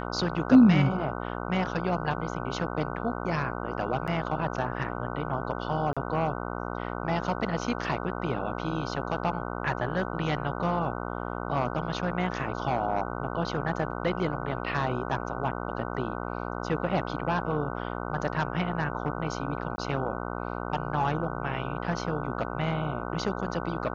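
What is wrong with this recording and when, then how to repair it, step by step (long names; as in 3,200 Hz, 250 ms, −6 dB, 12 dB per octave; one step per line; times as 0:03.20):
mains buzz 60 Hz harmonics 25 −34 dBFS
0:04.07–0:04.08: drop-out 7.1 ms
0:05.93–0:05.97: drop-out 36 ms
0:19.76–0:19.78: drop-out 20 ms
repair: hum removal 60 Hz, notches 25
repair the gap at 0:04.07, 7.1 ms
repair the gap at 0:05.93, 36 ms
repair the gap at 0:19.76, 20 ms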